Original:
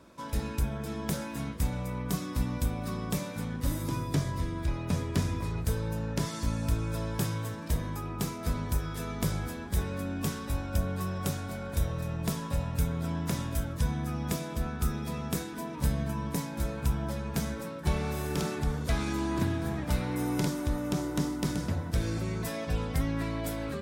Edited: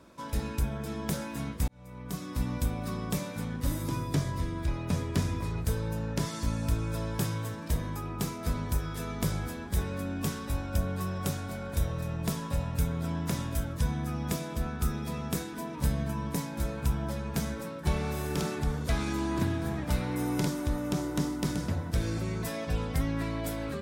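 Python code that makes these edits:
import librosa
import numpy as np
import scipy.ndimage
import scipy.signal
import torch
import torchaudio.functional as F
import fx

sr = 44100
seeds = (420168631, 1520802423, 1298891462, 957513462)

y = fx.edit(x, sr, fx.fade_in_span(start_s=1.68, length_s=0.82), tone=tone)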